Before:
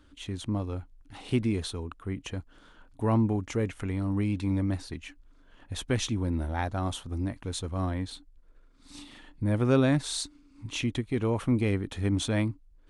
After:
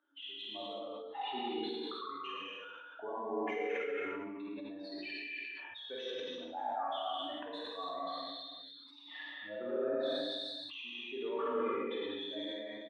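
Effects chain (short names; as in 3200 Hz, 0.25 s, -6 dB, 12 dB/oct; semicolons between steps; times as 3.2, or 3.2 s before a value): spectral contrast raised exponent 2.4; HPF 670 Hz 24 dB/oct; bell 3600 Hz +6.5 dB 0.21 oct; compressor, threshold -44 dBFS, peak gain reduction 16.5 dB; limiter -44.5 dBFS, peak gain reduction 13 dB; air absorption 390 m; on a send: reverse bouncing-ball echo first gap 50 ms, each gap 1.25×, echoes 5; on the sum: non-linear reverb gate 0.35 s flat, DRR -6.5 dB; sustainer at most 21 dB/s; gain +10 dB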